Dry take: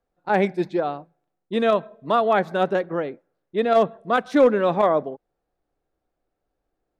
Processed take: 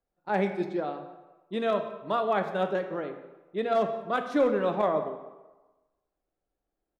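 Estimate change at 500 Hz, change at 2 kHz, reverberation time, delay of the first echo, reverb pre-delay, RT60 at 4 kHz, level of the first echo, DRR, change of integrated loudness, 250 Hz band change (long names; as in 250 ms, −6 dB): −7.0 dB, −7.5 dB, 1.2 s, 176 ms, 3 ms, 0.80 s, −21.0 dB, 6.0 dB, −7.5 dB, −7.0 dB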